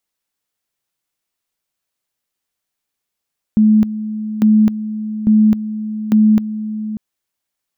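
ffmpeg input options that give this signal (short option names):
-f lavfi -i "aevalsrc='pow(10,(-7-13*gte(mod(t,0.85),0.26))/20)*sin(2*PI*215*t)':d=3.4:s=44100"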